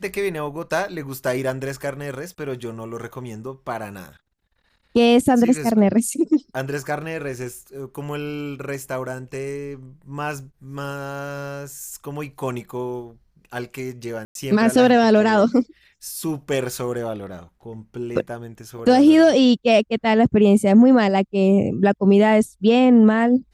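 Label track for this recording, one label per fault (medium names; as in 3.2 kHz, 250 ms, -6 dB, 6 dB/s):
14.250000	14.350000	dropout 102 ms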